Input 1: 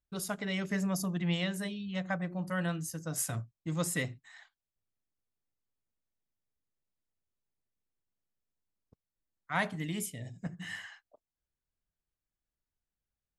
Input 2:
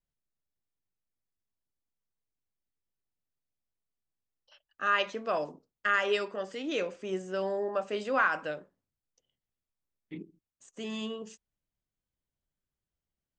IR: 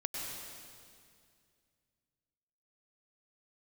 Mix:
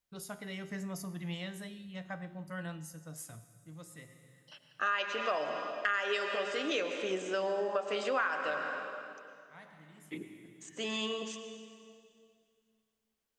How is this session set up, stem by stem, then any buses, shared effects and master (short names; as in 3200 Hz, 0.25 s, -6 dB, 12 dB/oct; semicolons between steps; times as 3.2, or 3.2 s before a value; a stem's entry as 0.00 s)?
-2.0 dB, 0.00 s, send -19 dB, resonator 78 Hz, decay 0.73 s, harmonics all, mix 60%; auto duck -21 dB, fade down 1.75 s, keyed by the second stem
+3.0 dB, 0.00 s, send -5 dB, HPF 580 Hz 6 dB/oct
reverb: on, RT60 2.2 s, pre-delay 92 ms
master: compressor 4:1, threshold -30 dBFS, peak gain reduction 12 dB